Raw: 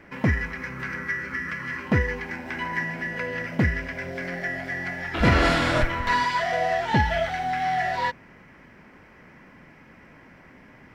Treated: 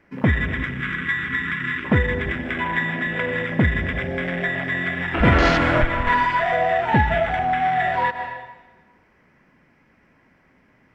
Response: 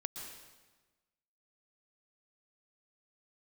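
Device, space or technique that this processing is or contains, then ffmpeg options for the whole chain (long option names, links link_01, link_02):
ducked reverb: -filter_complex "[0:a]asettb=1/sr,asplit=3[link_01][link_02][link_03];[link_01]atrim=end=2.764[link_04];[link_02]atrim=start=2.76:end=3.29,asetpts=PTS-STARTPTS,afade=type=in:duration=0.004:curve=qsin,afade=type=out:start_time=0.526:duration=0.004:curve=qsin,lowpass=frequency=7600:width=0.5412,lowpass=frequency=7600:width=1.3066[link_05];[link_03]atrim=start=3.286[link_06];[link_04][link_05]acrossfade=duration=0.004:curve1=hsin:curve2=qsin[link_07];[link_07][link_06]acrossfade=duration=0.004:curve1=qsin:curve2=hsin,afwtdn=0.0282,asplit=3[link_08][link_09][link_10];[1:a]atrim=start_sample=2205[link_11];[link_09][link_11]afir=irnorm=-1:irlink=0[link_12];[link_10]apad=whole_len=482475[link_13];[link_12][link_13]sidechaincompress=threshold=-31dB:ratio=8:attack=16:release=172,volume=2dB[link_14];[link_08][link_14]amix=inputs=2:normalize=0,volume=2dB"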